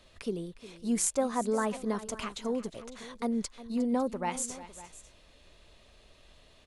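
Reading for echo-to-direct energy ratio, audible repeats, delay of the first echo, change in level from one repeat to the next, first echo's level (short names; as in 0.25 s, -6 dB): -13.5 dB, 2, 0.358 s, no steady repeat, -16.0 dB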